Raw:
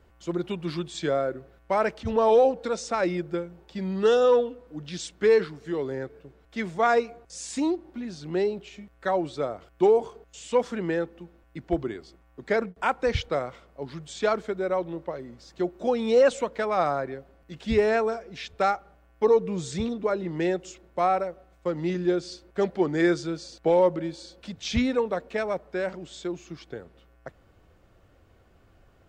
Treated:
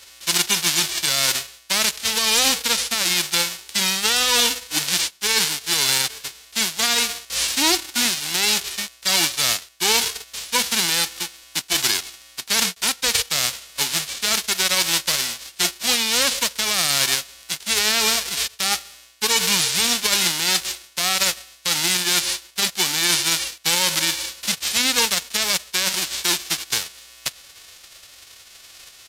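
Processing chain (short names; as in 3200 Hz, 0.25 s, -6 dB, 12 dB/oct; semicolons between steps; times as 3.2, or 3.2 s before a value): spectral whitening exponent 0.1; bell 4200 Hz +12.5 dB 2.6 oct; reverse; compressor 12:1, threshold -22 dBFS, peak gain reduction 17.5 dB; reverse; limiter -15.5 dBFS, peak gain reduction 8 dB; in parallel at -6.5 dB: bit-crush 6-bit; on the sum: downsampling 32000 Hz; gain +5.5 dB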